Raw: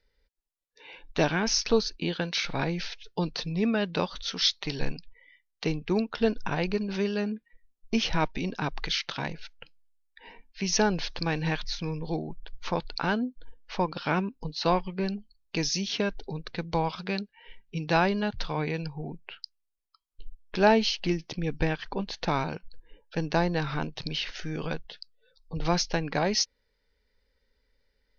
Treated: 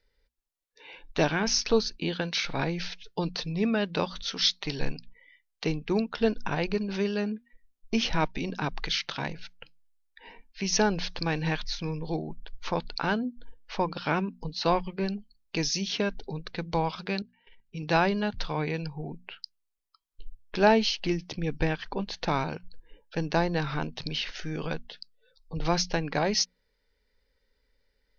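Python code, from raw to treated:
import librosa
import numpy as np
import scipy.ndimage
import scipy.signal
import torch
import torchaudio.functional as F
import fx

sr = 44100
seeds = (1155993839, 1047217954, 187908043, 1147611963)

y = fx.level_steps(x, sr, step_db=17, at=(17.22, 17.83))
y = fx.hum_notches(y, sr, base_hz=60, count=4)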